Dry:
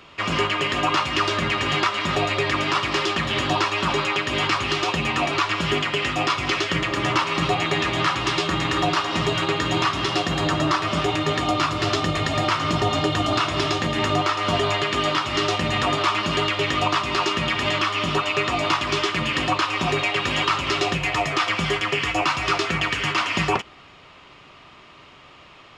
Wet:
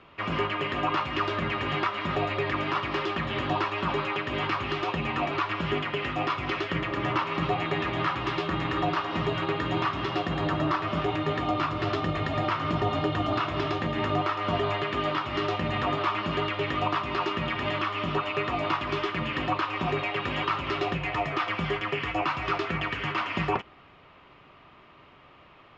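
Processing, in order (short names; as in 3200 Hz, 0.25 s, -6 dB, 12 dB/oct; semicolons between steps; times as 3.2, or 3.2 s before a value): Bessel low-pass 2100 Hz, order 2; gain -4.5 dB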